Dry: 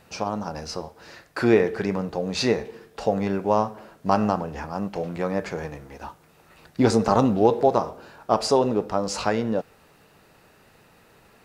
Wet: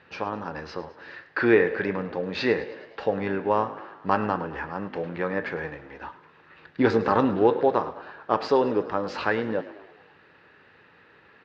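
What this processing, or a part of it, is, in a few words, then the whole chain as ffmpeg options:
frequency-shifting delay pedal into a guitar cabinet: -filter_complex "[0:a]asplit=6[link_01][link_02][link_03][link_04][link_05][link_06];[link_02]adelay=106,afreqshift=54,volume=-16.5dB[link_07];[link_03]adelay=212,afreqshift=108,volume=-21.2dB[link_08];[link_04]adelay=318,afreqshift=162,volume=-26dB[link_09];[link_05]adelay=424,afreqshift=216,volume=-30.7dB[link_10];[link_06]adelay=530,afreqshift=270,volume=-35.4dB[link_11];[link_01][link_07][link_08][link_09][link_10][link_11]amix=inputs=6:normalize=0,highpass=100,equalizer=frequency=130:width_type=q:width=4:gain=-7,equalizer=frequency=210:width_type=q:width=4:gain=-7,equalizer=frequency=680:width_type=q:width=4:gain=-8,equalizer=frequency=1700:width_type=q:width=4:gain=8,lowpass=frequency=3700:width=0.5412,lowpass=frequency=3700:width=1.3066"

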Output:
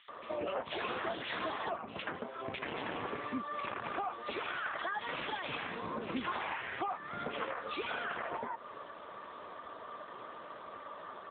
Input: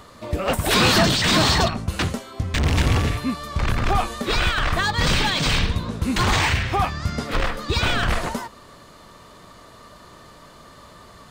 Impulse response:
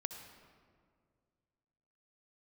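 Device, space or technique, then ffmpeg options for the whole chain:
voicemail: -filter_complex "[0:a]asettb=1/sr,asplit=3[link_01][link_02][link_03];[link_01]atrim=end=4.794[link_04];[link_02]atrim=start=4.79:end=5.49,asetpts=PTS-STARTPTS,afade=type=in:duration=0.004:curve=qsin,afade=type=out:start_time=0.696:duration=0.004:curve=qsin,equalizer=frequency=140:width_type=o:width=0.29:gain=3[link_05];[link_03]atrim=start=5.486[link_06];[link_04][link_05]acrossfade=duration=0.004:curve1=hsin:curve2=qsin[link_07];[link_07][link_06]acrossfade=duration=0.004:curve1=qsin:curve2=hsin,highpass=390,lowpass=3000,acrossover=split=2300[link_08][link_09];[link_08]adelay=80[link_10];[link_10][link_09]amix=inputs=2:normalize=0,acompressor=threshold=-37dB:ratio=6,volume=2.5dB" -ar 8000 -c:a libopencore_amrnb -b:a 7950

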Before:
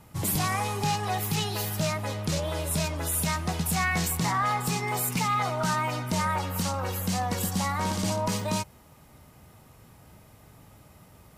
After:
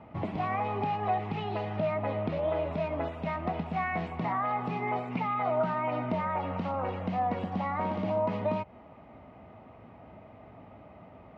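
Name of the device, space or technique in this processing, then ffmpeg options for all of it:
bass amplifier: -filter_complex "[0:a]asettb=1/sr,asplit=3[link_01][link_02][link_03];[link_01]atrim=end=1.734[link_04];[link_02]atrim=start=1.73:end=2.73,asetpts=PTS-STARTPTS,afade=type=in:duration=0.004:curve=qsin,afade=type=out:start_time=0.996:duration=0.004:curve=qsin,lowpass=5900[link_05];[link_03]atrim=start=2.726[link_06];[link_04][link_05]acrossfade=duration=0.004:curve1=hsin:curve2=qsin[link_07];[link_07][link_06]acrossfade=duration=0.004:curve1=qsin:curve2=hsin,acompressor=threshold=-31dB:ratio=6,highpass=77,equalizer=frequency=86:width_type=q:width=4:gain=-5,equalizer=frequency=140:width_type=q:width=4:gain=-9,equalizer=frequency=250:width_type=q:width=4:gain=4,equalizer=frequency=670:width_type=q:width=4:gain=9,equalizer=frequency=1600:width_type=q:width=4:gain=-7,lowpass=frequency=2400:width=0.5412,lowpass=frequency=2400:width=1.3066,volume=3.5dB"

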